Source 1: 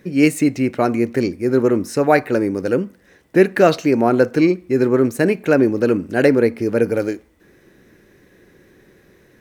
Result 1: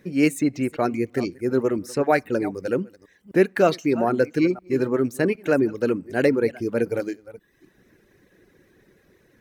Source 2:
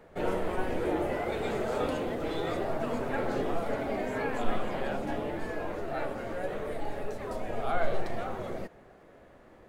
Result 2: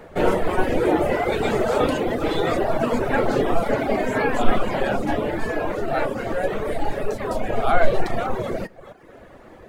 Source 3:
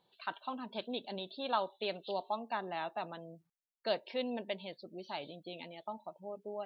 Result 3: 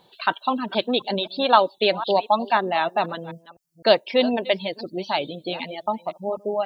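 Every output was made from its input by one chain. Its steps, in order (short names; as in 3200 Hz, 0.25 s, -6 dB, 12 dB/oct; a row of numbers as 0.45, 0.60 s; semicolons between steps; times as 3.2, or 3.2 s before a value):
reverse delay 0.255 s, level -14 dB; reverb removal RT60 0.78 s; match loudness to -23 LUFS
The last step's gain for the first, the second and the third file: -5.0, +12.0, +17.5 dB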